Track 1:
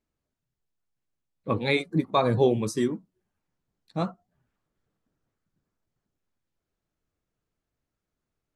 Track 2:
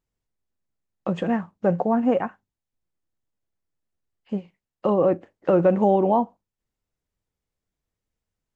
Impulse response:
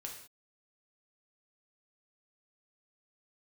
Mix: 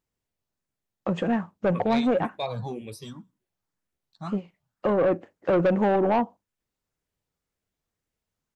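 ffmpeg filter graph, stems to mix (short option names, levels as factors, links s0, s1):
-filter_complex "[0:a]equalizer=f=330:w=1:g=-9,asplit=2[s0][s1];[s1]afreqshift=1.9[s2];[s0][s2]amix=inputs=2:normalize=1,adelay=250,volume=0.75,asplit=2[s3][s4];[s4]volume=0.0841[s5];[1:a]volume=1.12[s6];[2:a]atrim=start_sample=2205[s7];[s5][s7]afir=irnorm=-1:irlink=0[s8];[s3][s6][s8]amix=inputs=3:normalize=0,lowshelf=f=63:g=-9.5,asoftclip=type=tanh:threshold=0.158"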